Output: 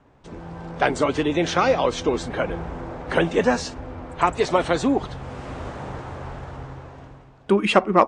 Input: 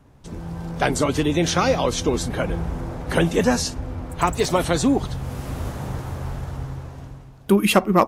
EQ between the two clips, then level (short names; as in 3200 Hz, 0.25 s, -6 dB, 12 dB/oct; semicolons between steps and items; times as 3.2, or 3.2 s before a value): steep low-pass 8900 Hz 48 dB/oct; tone controls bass -9 dB, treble -11 dB; +1.5 dB